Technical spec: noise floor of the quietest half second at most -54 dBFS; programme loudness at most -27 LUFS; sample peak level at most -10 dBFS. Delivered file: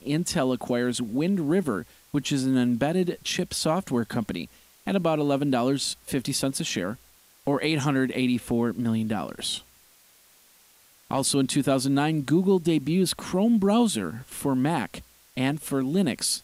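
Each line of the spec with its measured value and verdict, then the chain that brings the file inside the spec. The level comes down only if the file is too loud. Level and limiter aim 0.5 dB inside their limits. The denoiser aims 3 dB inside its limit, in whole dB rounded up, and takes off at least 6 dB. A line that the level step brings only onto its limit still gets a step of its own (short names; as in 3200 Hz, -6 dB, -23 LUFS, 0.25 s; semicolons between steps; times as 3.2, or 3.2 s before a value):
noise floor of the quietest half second -58 dBFS: OK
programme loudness -25.5 LUFS: fail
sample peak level -11.5 dBFS: OK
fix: gain -2 dB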